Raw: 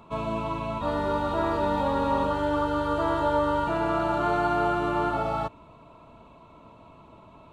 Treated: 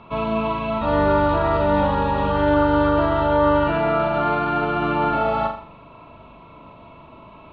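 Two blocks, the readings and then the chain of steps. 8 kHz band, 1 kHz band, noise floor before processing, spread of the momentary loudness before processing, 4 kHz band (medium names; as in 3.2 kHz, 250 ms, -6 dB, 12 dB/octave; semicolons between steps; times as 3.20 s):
no reading, +5.5 dB, -52 dBFS, 6 LU, +5.0 dB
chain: peaking EQ 2.8 kHz +7.5 dB 1.7 oct; peak limiter -17.5 dBFS, peak gain reduction 5.5 dB; distance through air 260 m; flutter echo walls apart 7 m, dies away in 0.46 s; trim +5 dB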